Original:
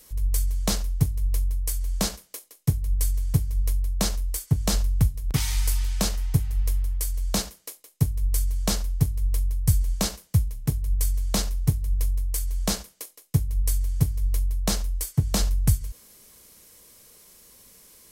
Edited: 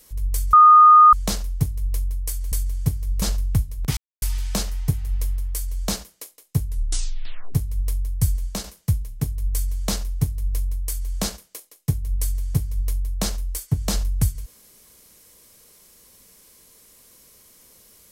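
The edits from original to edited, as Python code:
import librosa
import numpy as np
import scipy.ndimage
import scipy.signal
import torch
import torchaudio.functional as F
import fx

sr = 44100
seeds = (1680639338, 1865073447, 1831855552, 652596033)

y = fx.edit(x, sr, fx.insert_tone(at_s=0.53, length_s=0.6, hz=1230.0, db=-6.5),
    fx.cut(start_s=1.92, length_s=1.08),
    fx.cut(start_s=3.7, length_s=0.98),
    fx.silence(start_s=5.43, length_s=0.25),
    fx.tape_stop(start_s=8.11, length_s=0.89),
    fx.fade_out_to(start_s=9.78, length_s=0.32, floor_db=-6.0), tone=tone)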